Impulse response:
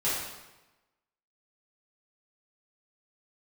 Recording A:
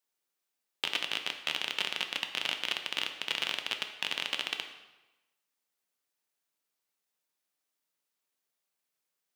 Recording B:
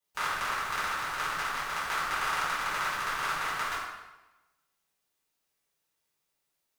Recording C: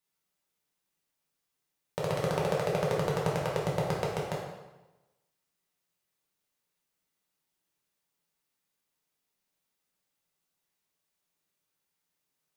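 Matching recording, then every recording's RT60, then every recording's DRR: B; 1.1, 1.1, 1.1 s; 5.0, -12.5, -4.5 dB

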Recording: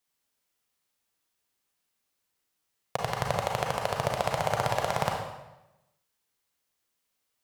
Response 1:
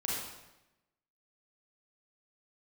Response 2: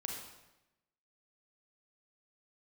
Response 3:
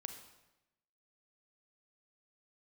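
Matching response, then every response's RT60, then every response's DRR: 2; 0.95, 0.95, 0.95 s; -5.5, 0.0, 6.0 dB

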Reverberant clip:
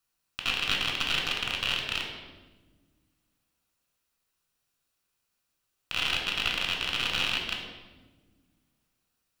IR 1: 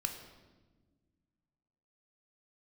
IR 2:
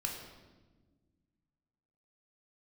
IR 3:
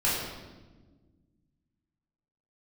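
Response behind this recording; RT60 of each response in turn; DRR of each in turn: 2; 1.4, 1.3, 1.3 s; 4.5, 0.0, -10.0 dB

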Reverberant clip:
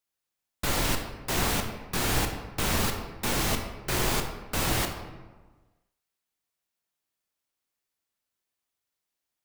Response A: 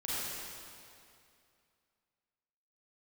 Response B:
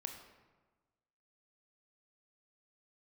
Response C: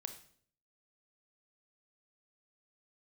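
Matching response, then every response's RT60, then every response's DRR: B; 2.5, 1.3, 0.55 s; -9.5, 4.0, 7.5 dB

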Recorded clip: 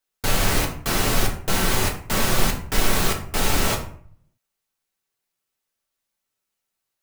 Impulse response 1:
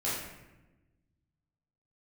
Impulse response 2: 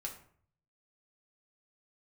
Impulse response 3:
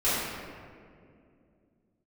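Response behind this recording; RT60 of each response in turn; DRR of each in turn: 2; 1.1, 0.55, 2.3 s; -9.5, 0.0, -15.0 dB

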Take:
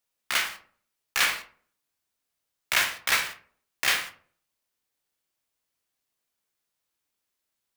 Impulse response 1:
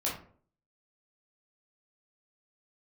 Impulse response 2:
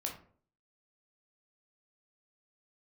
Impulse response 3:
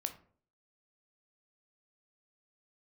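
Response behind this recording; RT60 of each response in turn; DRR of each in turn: 3; 0.50, 0.50, 0.50 s; -6.0, 0.0, 6.5 dB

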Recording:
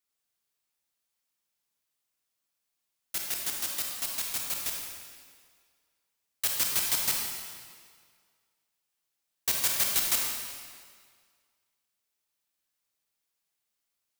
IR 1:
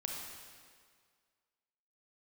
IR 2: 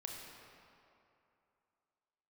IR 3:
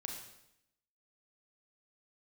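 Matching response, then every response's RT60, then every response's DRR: 1; 1.9, 2.8, 0.80 s; -0.5, -0.5, 1.0 dB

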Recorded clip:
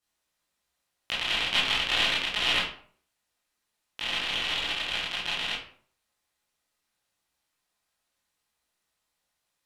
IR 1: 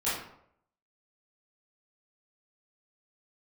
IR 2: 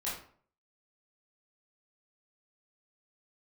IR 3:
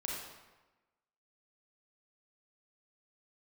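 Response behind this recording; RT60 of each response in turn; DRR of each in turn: 2; 0.70, 0.50, 1.1 s; -12.5, -8.5, -3.5 dB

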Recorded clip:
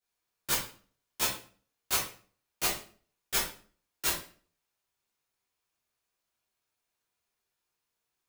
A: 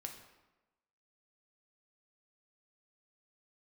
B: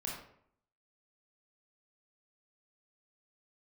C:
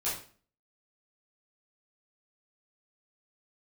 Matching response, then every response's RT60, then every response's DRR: C; 1.1, 0.65, 0.45 s; 2.5, -3.5, -10.0 dB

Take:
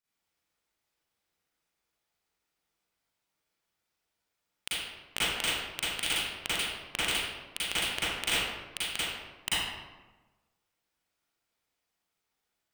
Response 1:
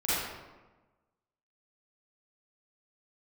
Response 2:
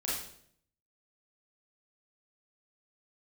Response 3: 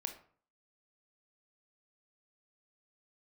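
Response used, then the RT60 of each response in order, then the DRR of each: 1; 1.2, 0.65, 0.50 s; -12.5, -7.0, 5.5 dB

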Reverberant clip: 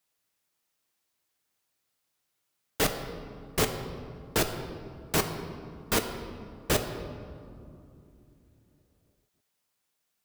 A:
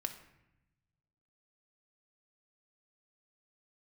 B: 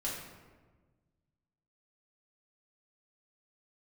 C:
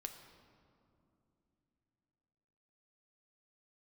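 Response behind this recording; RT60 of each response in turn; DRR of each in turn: C; 0.85, 1.4, 2.9 s; 5.5, -5.5, 5.0 dB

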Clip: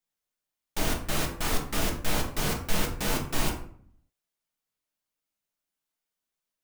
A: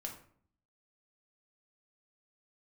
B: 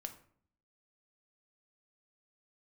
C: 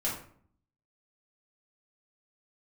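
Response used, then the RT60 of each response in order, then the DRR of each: A; 0.55, 0.55, 0.55 s; 0.5, 6.0, -7.5 dB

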